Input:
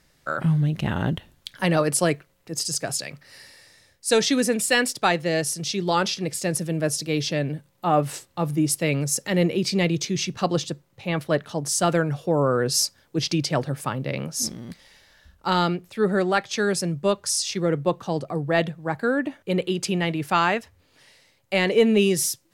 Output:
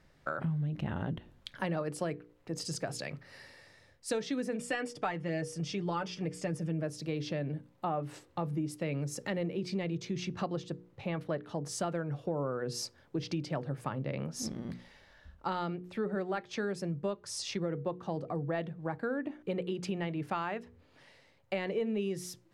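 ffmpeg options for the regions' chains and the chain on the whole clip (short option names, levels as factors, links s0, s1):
-filter_complex "[0:a]asettb=1/sr,asplit=3[s0][s1][s2];[s0]atrim=end=4.594[s3];[s1]atrim=start=4.59:end=6.83,asetpts=PTS-STARTPTS,afade=t=in:d=0.004:c=qsin,afade=t=out:st=2.236:d=0.004:c=qsin,lowpass=f=11000:w=0.5412,lowpass=f=11000:w=1.3066,bandreject=f=4000:w=6.2,aecho=1:1:6.7:0.56,atrim=end_sample=98784[s4];[s2]atrim=start=6.826[s5];[s3][s4]acrossfade=d=0.004:c1=hsin:c2=qsin[s6];[s6][s5]acrossfade=d=0.004:c1=qsin:c2=hsin,lowpass=f=1500:p=1,bandreject=f=60:t=h:w=6,bandreject=f=120:t=h:w=6,bandreject=f=180:t=h:w=6,bandreject=f=240:t=h:w=6,bandreject=f=300:t=h:w=6,bandreject=f=360:t=h:w=6,bandreject=f=420:t=h:w=6,bandreject=f=480:t=h:w=6,acompressor=threshold=0.0224:ratio=4"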